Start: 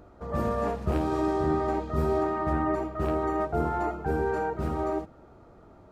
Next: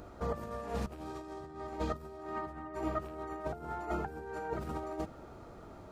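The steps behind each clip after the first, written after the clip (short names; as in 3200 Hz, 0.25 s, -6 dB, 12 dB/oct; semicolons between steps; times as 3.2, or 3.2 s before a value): negative-ratio compressor -33 dBFS, ratio -0.5; high shelf 2300 Hz +8 dB; gain -5 dB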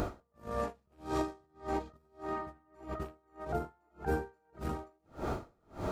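negative-ratio compressor -45 dBFS, ratio -1; dB-linear tremolo 1.7 Hz, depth 40 dB; gain +12.5 dB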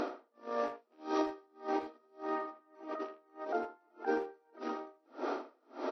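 FFT band-pass 230–6000 Hz; speakerphone echo 80 ms, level -11 dB; gain +1 dB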